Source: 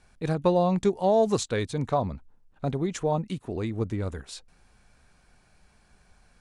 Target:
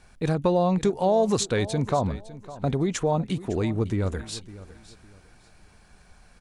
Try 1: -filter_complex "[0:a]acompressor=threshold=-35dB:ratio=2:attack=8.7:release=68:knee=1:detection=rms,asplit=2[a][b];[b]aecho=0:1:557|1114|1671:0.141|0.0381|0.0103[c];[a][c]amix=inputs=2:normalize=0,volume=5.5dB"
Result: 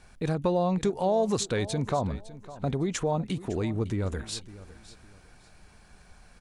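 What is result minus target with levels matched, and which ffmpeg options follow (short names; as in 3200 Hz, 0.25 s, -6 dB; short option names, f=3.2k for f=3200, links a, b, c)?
compressor: peak gain reduction +4 dB
-filter_complex "[0:a]acompressor=threshold=-27.5dB:ratio=2:attack=8.7:release=68:knee=1:detection=rms,asplit=2[a][b];[b]aecho=0:1:557|1114|1671:0.141|0.0381|0.0103[c];[a][c]amix=inputs=2:normalize=0,volume=5.5dB"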